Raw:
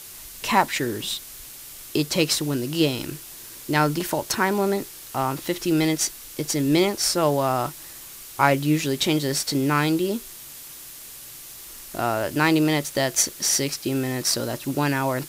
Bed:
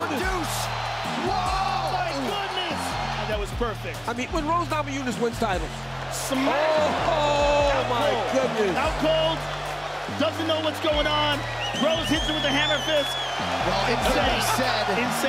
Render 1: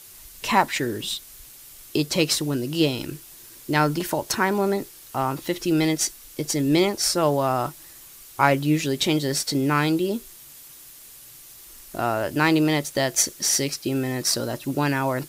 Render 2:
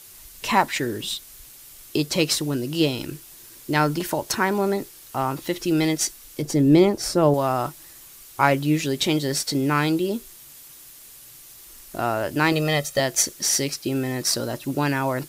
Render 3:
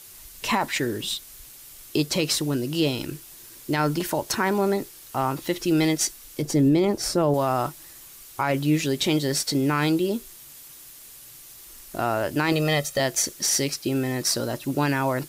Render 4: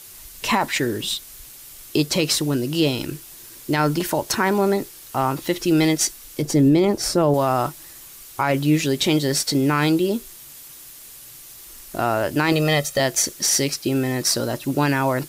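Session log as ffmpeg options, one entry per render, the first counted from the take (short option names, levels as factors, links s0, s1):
-af "afftdn=nr=6:nf=-41"
-filter_complex "[0:a]asettb=1/sr,asplit=3[s0][s1][s2];[s0]atrim=end=6.424[s3];[s1]atrim=start=6.42:end=7.34,asetpts=PTS-STARTPTS,afade=t=in:d=0.004:c=qsin,afade=t=out:st=0.916:d=0.004:c=qsin,tiltshelf=f=970:g=6[s4];[s2]atrim=start=7.336[s5];[s3][s4]acrossfade=d=0.004:c1=hsin:c2=qsin[s6];[s6][s5]acrossfade=d=0.004:c1=qsin:c2=hsin,asettb=1/sr,asplit=3[s7][s8][s9];[s7]atrim=end=12.524[s10];[s8]atrim=start=12.52:end=13,asetpts=PTS-STARTPTS,afade=t=in:d=0.004:c=qsin,afade=t=out:st=0.476:d=0.004:c=qsin,aecho=1:1:1.6:0.65,atrim=end_sample=21168[s11];[s9]atrim=start=12.996[s12];[s10][s11]acrossfade=d=0.004:c1=hsin:c2=qsin[s13];[s13][s12]acrossfade=d=0.004:c1=qsin:c2=hsin"
-af "alimiter=limit=0.237:level=0:latency=1:release=26"
-af "volume=1.5"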